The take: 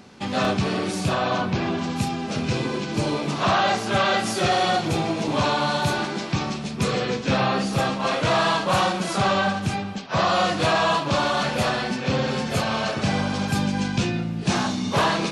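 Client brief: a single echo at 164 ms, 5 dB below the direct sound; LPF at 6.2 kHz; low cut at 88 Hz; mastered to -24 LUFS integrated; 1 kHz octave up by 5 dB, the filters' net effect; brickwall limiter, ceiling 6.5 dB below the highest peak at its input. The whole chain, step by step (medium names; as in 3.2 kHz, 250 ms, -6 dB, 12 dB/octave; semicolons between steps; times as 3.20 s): high-pass 88 Hz; low-pass 6.2 kHz; peaking EQ 1 kHz +6.5 dB; peak limiter -13 dBFS; delay 164 ms -5 dB; trim -2 dB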